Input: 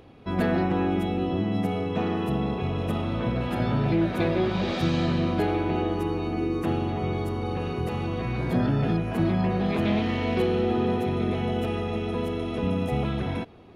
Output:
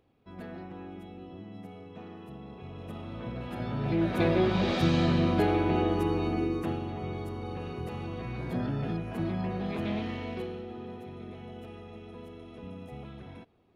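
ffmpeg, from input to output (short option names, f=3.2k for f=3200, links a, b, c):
-af "volume=-0.5dB,afade=t=in:st=2.43:d=1.33:silence=0.316228,afade=t=in:st=3.76:d=0.52:silence=0.398107,afade=t=out:st=6.26:d=0.54:silence=0.421697,afade=t=out:st=10.03:d=0.62:silence=0.354813"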